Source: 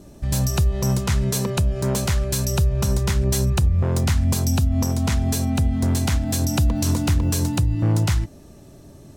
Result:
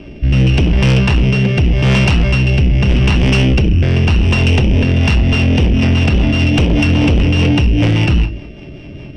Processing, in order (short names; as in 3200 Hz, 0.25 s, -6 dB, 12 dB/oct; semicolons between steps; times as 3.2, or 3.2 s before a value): sample sorter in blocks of 16 samples; LPF 4200 Hz 24 dB/oct; non-linear reverb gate 0.18 s falling, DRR 5.5 dB; rotary speaker horn 0.85 Hz, later 5 Hz, at 4.65; in parallel at -4 dB: sine folder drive 12 dB, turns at -6.5 dBFS